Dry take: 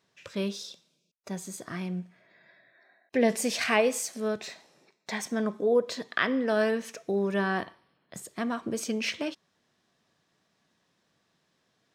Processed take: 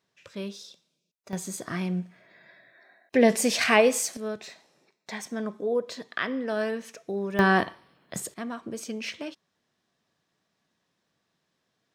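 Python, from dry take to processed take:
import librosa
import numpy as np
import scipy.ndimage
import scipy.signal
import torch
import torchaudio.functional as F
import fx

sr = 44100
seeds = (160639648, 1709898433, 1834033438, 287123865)

y = fx.gain(x, sr, db=fx.steps((0.0, -4.5), (1.33, 4.5), (4.17, -3.0), (7.39, 8.0), (8.34, -4.0)))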